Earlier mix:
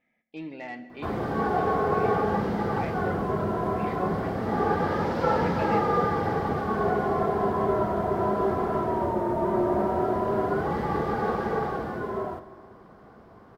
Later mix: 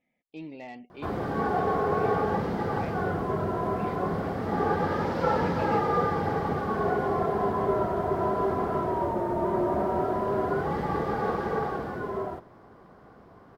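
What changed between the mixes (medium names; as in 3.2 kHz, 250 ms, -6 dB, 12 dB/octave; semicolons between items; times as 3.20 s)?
speech: add peaking EQ 1.5 kHz -14.5 dB 0.61 oct; reverb: off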